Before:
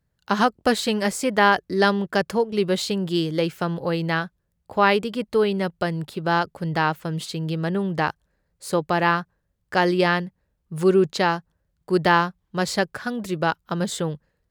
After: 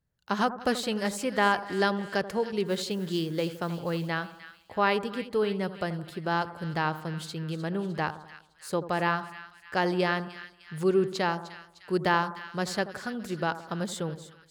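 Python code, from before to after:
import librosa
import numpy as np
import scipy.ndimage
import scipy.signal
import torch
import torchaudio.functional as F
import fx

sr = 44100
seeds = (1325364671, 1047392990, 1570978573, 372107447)

p1 = fx.mod_noise(x, sr, seeds[0], snr_db=27, at=(2.65, 4.07), fade=0.02)
p2 = p1 + fx.echo_split(p1, sr, split_hz=1400.0, low_ms=83, high_ms=304, feedback_pct=52, wet_db=-13.0, dry=0)
y = F.gain(torch.from_numpy(p2), -7.0).numpy()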